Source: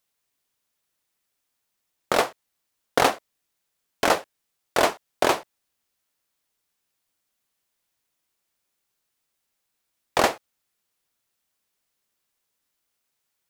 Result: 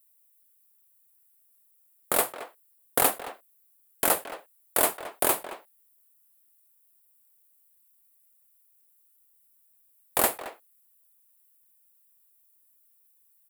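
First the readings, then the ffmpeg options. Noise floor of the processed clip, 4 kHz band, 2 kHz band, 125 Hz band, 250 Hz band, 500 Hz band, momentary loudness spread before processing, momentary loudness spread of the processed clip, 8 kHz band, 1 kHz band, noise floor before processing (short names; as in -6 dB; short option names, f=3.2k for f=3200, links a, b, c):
-65 dBFS, -6.5 dB, -6.5 dB, -6.5 dB, -6.5 dB, -6.5 dB, 7 LU, 19 LU, +6.0 dB, -6.5 dB, -79 dBFS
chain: -filter_complex "[0:a]asplit=2[a][b];[b]adelay=220,highpass=300,lowpass=3.4k,asoftclip=type=hard:threshold=-14dB,volume=-11dB[c];[a][c]amix=inputs=2:normalize=0,aexciter=amount=8.8:drive=6.3:freq=8.3k,volume=-6.5dB"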